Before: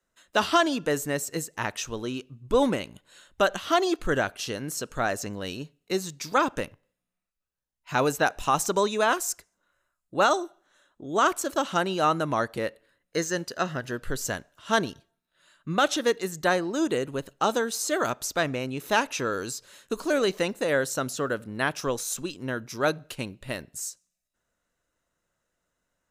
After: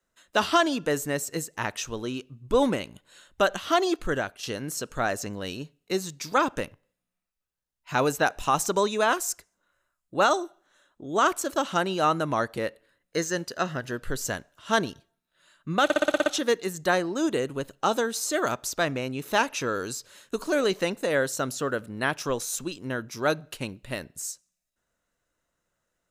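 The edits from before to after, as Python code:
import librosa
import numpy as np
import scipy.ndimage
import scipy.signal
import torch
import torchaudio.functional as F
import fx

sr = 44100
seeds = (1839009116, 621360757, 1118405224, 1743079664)

y = fx.edit(x, sr, fx.fade_out_to(start_s=3.94, length_s=0.49, floor_db=-7.5),
    fx.stutter(start_s=15.84, slice_s=0.06, count=8), tone=tone)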